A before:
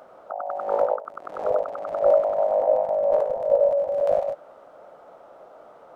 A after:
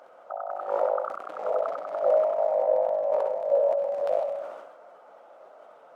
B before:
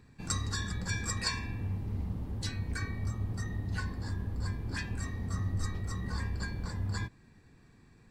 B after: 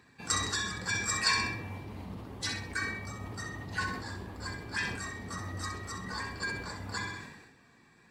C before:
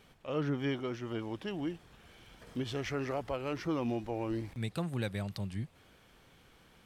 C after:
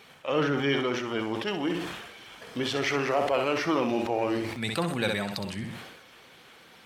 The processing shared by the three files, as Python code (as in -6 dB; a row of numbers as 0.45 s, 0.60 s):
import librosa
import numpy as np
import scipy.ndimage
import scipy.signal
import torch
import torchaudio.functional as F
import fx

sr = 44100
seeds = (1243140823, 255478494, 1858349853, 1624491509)

y = fx.spec_quant(x, sr, step_db=15)
y = fx.highpass(y, sr, hz=650.0, slope=6)
y = fx.high_shelf(y, sr, hz=6100.0, db=-5.5)
y = fx.room_flutter(y, sr, wall_m=11.0, rt60_s=0.44)
y = fx.sustainer(y, sr, db_per_s=48.0)
y = y * 10.0 ** (-12 / 20.0) / np.max(np.abs(y))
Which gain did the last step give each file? -1.0 dB, +7.0 dB, +13.0 dB